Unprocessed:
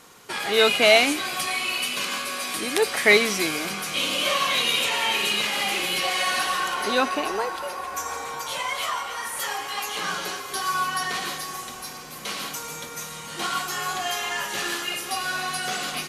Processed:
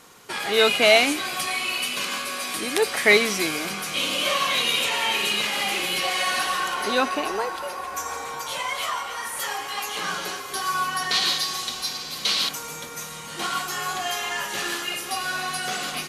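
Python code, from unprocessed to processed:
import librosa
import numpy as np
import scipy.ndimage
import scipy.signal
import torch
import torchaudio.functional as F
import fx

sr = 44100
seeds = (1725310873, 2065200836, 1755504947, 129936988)

y = fx.peak_eq(x, sr, hz=4100.0, db=14.5, octaves=1.1, at=(11.11, 12.49))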